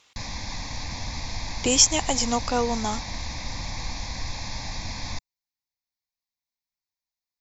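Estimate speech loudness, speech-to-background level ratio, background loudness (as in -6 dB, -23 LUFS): -22.0 LUFS, 11.5 dB, -33.5 LUFS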